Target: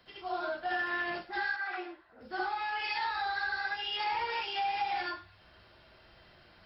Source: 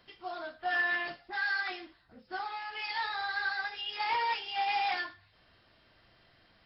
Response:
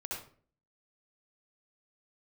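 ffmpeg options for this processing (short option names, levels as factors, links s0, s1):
-filter_complex "[1:a]atrim=start_sample=2205,afade=t=out:st=0.14:d=0.01,atrim=end_sample=6615[s0];[0:a][s0]afir=irnorm=-1:irlink=0,acrossover=split=270[s1][s2];[s2]acompressor=threshold=0.0158:ratio=6[s3];[s1][s3]amix=inputs=2:normalize=0,asettb=1/sr,asplit=3[s4][s5][s6];[s4]atrim=end=1.564[s7];[s5]atrim=start=1.56:end=2.21,asetpts=PTS-STARTPTS,afade=t=in:d=0.004:c=qsin,afade=t=out:st=0.646:d=0.004:c=qsin,acrossover=split=350 2300:gain=0.2 1 0.224[s8][s9][s10];[s8][s9][s10]amix=inputs=3:normalize=0[s11];[s6]atrim=start=2.206[s12];[s7][s11]acrossfade=d=0.004:c1=hsin:c2=qsin[s13];[s13][s12]acrossfade=d=0.004:c1=qsin:c2=hsin,volume=1.88"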